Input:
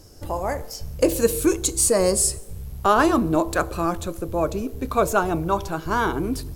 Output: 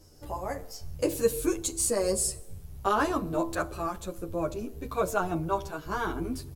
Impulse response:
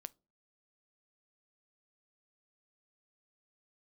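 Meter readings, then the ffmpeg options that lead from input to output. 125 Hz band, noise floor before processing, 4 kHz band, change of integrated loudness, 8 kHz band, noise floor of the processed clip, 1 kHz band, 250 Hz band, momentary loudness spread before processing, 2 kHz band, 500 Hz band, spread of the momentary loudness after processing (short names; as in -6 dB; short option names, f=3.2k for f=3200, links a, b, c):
-8.0 dB, -39 dBFS, -8.0 dB, -8.0 dB, -8.0 dB, -47 dBFS, -8.0 dB, -9.0 dB, 11 LU, -8.5 dB, -7.5 dB, 11 LU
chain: -filter_complex "[1:a]atrim=start_sample=2205[a];[0:a][a]afir=irnorm=-1:irlink=0,asplit=2[b][c];[c]adelay=9.7,afreqshift=-1.1[d];[b][d]amix=inputs=2:normalize=1"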